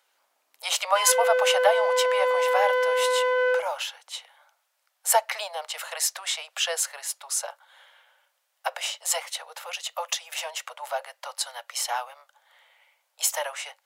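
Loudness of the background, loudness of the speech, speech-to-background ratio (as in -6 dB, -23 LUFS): -23.5 LUFS, -27.5 LUFS, -4.0 dB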